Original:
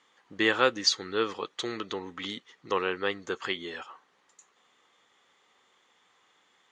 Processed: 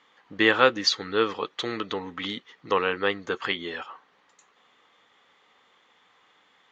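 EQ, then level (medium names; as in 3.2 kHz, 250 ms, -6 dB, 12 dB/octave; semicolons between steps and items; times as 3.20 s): low-pass 4.4 kHz 12 dB/octave; band-stop 370 Hz, Q 12; +5.0 dB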